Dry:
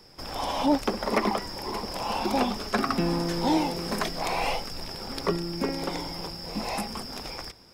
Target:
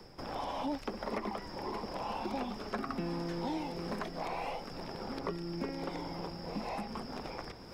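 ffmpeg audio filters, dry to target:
ffmpeg -i in.wav -filter_complex "[0:a]acrossover=split=120|1700|5500[link_01][link_02][link_03][link_04];[link_01]acompressor=threshold=-51dB:ratio=4[link_05];[link_02]acompressor=threshold=-36dB:ratio=4[link_06];[link_03]acompressor=threshold=-43dB:ratio=4[link_07];[link_04]acompressor=threshold=-53dB:ratio=4[link_08];[link_05][link_06][link_07][link_08]amix=inputs=4:normalize=0,highshelf=frequency=2400:gain=-11,areverse,acompressor=mode=upward:threshold=-41dB:ratio=2.5,areverse" out.wav

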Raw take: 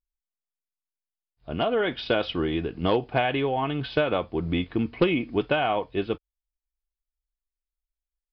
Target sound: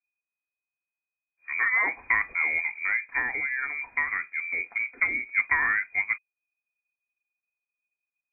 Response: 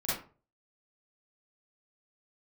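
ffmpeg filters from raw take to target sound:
-filter_complex "[0:a]asplit=3[link_01][link_02][link_03];[link_01]afade=type=out:start_time=2.77:duration=0.02[link_04];[link_02]flanger=delay=6.1:depth=2.2:regen=-75:speed=2:shape=sinusoidal,afade=type=in:start_time=2.77:duration=0.02,afade=type=out:start_time=5.33:duration=0.02[link_05];[link_03]afade=type=in:start_time=5.33:duration=0.02[link_06];[link_04][link_05][link_06]amix=inputs=3:normalize=0,lowpass=frequency=2100:width_type=q:width=0.5098,lowpass=frequency=2100:width_type=q:width=0.6013,lowpass=frequency=2100:width_type=q:width=0.9,lowpass=frequency=2100:width_type=q:width=2.563,afreqshift=-2500"

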